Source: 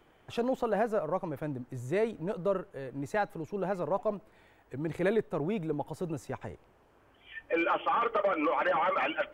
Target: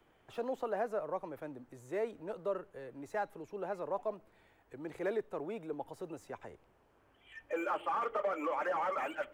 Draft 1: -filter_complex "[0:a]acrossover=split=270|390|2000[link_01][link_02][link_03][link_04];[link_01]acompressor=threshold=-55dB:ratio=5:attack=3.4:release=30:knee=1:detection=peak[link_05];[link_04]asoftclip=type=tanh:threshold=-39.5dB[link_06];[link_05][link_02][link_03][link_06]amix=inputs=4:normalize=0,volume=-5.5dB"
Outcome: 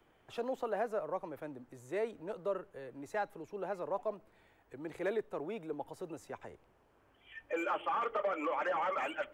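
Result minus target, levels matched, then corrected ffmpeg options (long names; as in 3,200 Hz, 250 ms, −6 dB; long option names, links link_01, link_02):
soft clipping: distortion −8 dB
-filter_complex "[0:a]acrossover=split=270|390|2000[link_01][link_02][link_03][link_04];[link_01]acompressor=threshold=-55dB:ratio=5:attack=3.4:release=30:knee=1:detection=peak[link_05];[link_04]asoftclip=type=tanh:threshold=-50dB[link_06];[link_05][link_02][link_03][link_06]amix=inputs=4:normalize=0,volume=-5.5dB"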